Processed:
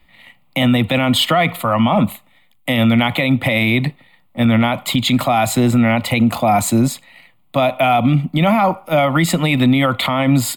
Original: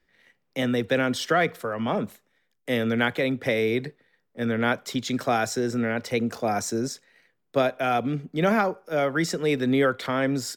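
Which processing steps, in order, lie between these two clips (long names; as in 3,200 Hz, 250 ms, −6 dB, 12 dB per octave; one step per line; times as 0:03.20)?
phaser with its sweep stopped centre 1,600 Hz, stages 6
boost into a limiter +24.5 dB
level −5 dB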